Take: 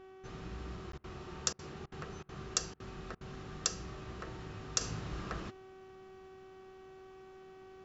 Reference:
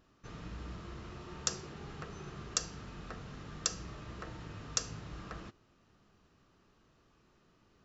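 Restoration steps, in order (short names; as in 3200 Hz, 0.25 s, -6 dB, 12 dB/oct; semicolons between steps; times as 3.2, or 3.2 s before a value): de-hum 379 Hz, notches 9; interpolate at 0.92, 13 ms; interpolate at 0.98/1.53/1.86/2.23/2.74/3.15, 58 ms; gain correction -4.5 dB, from 4.81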